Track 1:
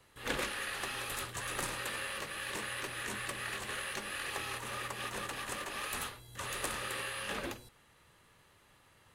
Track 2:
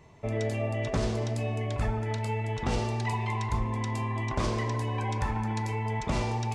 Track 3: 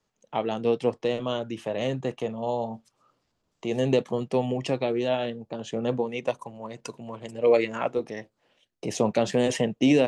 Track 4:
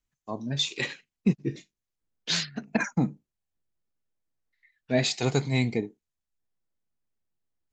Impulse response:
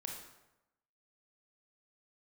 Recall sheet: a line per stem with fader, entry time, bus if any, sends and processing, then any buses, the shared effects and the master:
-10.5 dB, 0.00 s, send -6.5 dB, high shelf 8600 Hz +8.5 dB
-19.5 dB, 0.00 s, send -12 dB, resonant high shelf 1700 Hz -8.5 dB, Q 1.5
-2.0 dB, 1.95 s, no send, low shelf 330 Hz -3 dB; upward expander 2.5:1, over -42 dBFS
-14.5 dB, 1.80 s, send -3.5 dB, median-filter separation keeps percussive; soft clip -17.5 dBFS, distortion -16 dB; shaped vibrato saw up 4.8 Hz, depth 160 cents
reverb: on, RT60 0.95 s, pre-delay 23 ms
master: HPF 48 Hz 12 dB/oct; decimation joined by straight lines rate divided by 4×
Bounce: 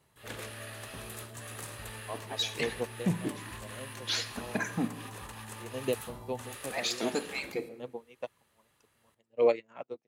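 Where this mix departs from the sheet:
stem 4 -14.5 dB -> -6.0 dB; master: missing decimation joined by straight lines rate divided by 4×

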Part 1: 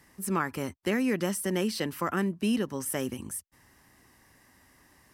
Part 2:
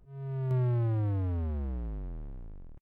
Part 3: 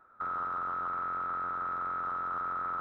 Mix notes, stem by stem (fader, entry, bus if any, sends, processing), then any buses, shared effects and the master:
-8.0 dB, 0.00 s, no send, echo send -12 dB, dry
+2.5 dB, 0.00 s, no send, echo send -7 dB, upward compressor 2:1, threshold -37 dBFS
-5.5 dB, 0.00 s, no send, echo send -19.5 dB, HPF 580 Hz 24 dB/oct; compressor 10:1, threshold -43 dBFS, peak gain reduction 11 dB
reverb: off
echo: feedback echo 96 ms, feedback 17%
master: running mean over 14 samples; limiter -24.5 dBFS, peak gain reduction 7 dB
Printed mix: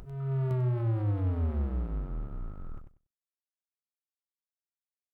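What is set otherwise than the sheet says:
stem 1: muted; stem 3 -5.5 dB -> -15.5 dB; master: missing running mean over 14 samples

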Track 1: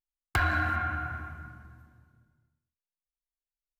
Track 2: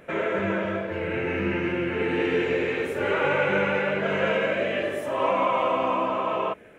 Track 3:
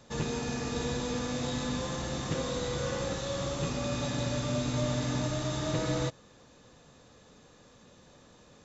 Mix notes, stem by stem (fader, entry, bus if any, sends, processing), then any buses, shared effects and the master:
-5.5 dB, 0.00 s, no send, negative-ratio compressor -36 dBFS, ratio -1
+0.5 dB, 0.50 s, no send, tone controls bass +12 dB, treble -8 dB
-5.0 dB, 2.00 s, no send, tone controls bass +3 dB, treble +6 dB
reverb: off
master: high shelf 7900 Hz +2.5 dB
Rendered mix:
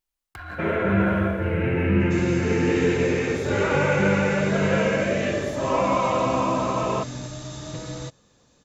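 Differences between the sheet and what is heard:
stem 1 -5.5 dB -> +3.5 dB; master: missing high shelf 7900 Hz +2.5 dB

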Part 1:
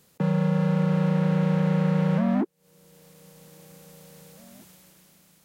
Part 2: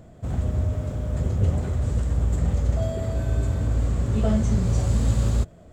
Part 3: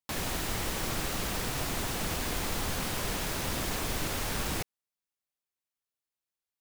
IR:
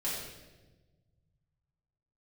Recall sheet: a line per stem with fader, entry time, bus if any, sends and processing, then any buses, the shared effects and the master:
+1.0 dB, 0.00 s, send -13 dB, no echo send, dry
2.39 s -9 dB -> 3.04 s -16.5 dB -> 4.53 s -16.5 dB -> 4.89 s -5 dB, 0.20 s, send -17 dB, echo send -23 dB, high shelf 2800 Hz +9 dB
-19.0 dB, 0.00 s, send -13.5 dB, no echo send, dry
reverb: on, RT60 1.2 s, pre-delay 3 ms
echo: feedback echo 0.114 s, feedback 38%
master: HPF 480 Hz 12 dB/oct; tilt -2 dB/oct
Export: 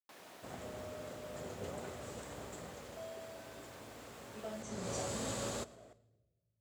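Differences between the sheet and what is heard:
stem 1: muted; reverb return -7.5 dB

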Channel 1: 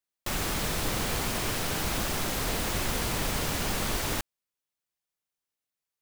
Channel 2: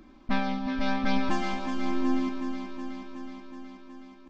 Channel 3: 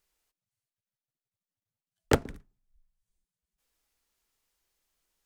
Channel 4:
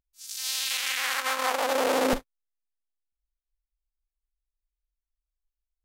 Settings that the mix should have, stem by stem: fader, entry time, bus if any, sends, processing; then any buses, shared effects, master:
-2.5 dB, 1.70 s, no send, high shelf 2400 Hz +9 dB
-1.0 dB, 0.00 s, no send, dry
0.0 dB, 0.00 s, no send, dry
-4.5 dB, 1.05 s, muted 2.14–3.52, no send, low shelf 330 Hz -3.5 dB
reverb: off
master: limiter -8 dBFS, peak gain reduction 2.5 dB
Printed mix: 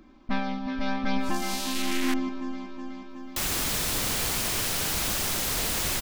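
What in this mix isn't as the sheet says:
stem 1: entry 1.70 s -> 3.10 s; stem 3: muted

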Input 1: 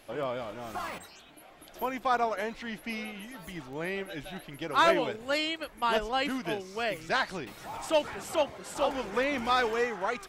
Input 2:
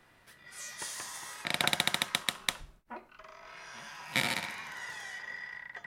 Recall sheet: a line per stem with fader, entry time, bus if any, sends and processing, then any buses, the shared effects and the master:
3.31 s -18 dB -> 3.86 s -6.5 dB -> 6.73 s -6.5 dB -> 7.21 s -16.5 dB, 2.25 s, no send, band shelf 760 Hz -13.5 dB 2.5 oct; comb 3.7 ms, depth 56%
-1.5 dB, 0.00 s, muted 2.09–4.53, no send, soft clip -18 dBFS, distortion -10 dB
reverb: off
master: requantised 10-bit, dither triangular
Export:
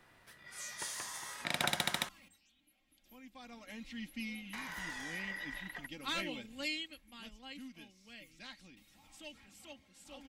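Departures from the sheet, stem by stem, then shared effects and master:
stem 1: entry 2.25 s -> 1.30 s; master: missing requantised 10-bit, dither triangular

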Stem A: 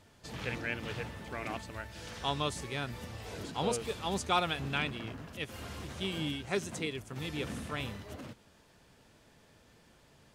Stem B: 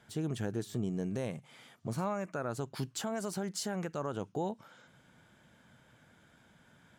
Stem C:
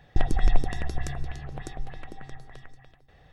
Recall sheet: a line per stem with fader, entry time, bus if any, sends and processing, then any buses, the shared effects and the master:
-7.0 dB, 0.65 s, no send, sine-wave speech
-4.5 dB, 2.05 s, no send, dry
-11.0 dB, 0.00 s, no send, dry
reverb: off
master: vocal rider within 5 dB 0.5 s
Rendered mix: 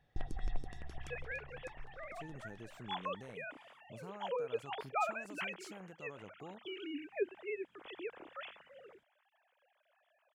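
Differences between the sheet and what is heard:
stem B -4.5 dB -> -15.5 dB; stem C -11.0 dB -> -17.0 dB; master: missing vocal rider within 5 dB 0.5 s

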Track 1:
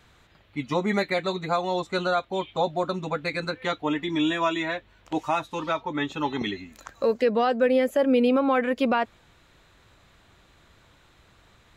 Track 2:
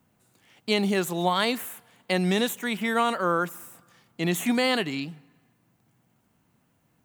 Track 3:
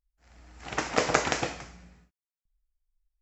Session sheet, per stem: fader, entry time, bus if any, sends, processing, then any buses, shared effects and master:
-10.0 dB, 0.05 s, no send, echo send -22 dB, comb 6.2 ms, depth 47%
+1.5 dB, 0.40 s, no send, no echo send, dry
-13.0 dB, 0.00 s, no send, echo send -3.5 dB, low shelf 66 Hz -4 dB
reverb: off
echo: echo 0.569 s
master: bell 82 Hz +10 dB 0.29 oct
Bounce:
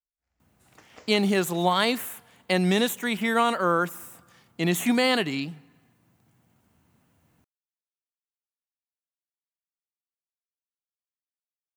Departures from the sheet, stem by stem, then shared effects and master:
stem 1: muted; stem 3 -13.0 dB -> -25.0 dB

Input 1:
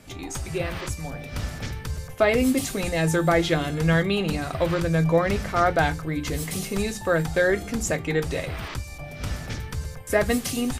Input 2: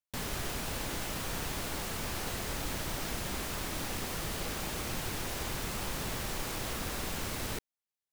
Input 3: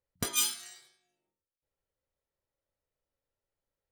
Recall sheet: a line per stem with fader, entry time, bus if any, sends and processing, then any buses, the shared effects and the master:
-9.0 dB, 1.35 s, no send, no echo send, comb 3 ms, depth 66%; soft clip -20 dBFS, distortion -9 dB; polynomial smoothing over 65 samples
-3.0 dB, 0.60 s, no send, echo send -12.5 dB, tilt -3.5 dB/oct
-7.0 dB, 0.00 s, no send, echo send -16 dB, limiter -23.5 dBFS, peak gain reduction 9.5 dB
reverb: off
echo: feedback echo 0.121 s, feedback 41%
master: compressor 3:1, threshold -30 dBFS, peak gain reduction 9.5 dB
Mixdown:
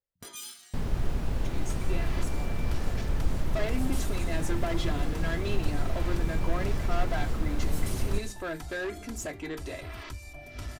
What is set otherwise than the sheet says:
stem 1: missing polynomial smoothing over 65 samples; master: missing compressor 3:1, threshold -30 dBFS, peak gain reduction 9.5 dB

